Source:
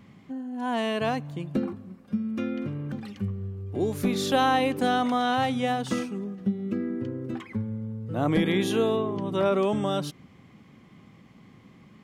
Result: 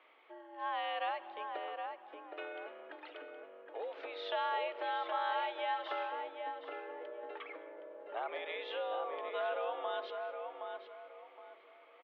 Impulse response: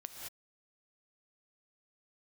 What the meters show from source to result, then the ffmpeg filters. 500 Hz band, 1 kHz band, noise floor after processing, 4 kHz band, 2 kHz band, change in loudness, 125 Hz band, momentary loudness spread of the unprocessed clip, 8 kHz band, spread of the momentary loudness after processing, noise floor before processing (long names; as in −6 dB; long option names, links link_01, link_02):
−11.5 dB, −8.0 dB, −60 dBFS, −11.0 dB, −8.5 dB, −12.5 dB, below −40 dB, 11 LU, below −35 dB, 16 LU, −54 dBFS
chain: -filter_complex "[0:a]acompressor=threshold=-28dB:ratio=6,asplit=2[link_01][link_02];[link_02]adelay=768,lowpass=frequency=1800:poles=1,volume=-4.5dB,asplit=2[link_03][link_04];[link_04]adelay=768,lowpass=frequency=1800:poles=1,volume=0.31,asplit=2[link_05][link_06];[link_06]adelay=768,lowpass=frequency=1800:poles=1,volume=0.31,asplit=2[link_07][link_08];[link_08]adelay=768,lowpass=frequency=1800:poles=1,volume=0.31[link_09];[link_01][link_03][link_05][link_07][link_09]amix=inputs=5:normalize=0,asplit=2[link_10][link_11];[1:a]atrim=start_sample=2205[link_12];[link_11][link_12]afir=irnorm=-1:irlink=0,volume=-8.5dB[link_13];[link_10][link_13]amix=inputs=2:normalize=0,highpass=frequency=460:width_type=q:width=0.5412,highpass=frequency=460:width_type=q:width=1.307,lowpass=frequency=3400:width_type=q:width=0.5176,lowpass=frequency=3400:width_type=q:width=0.7071,lowpass=frequency=3400:width_type=q:width=1.932,afreqshift=87,volume=-4.5dB"